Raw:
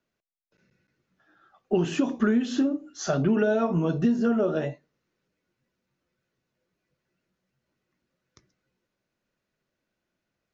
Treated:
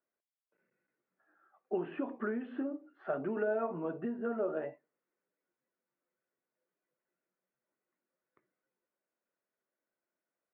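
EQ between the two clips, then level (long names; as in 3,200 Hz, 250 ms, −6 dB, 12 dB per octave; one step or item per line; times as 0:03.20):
high-pass filter 390 Hz 12 dB per octave
low-pass filter 2,400 Hz 24 dB per octave
high-frequency loss of the air 480 metres
−5.5 dB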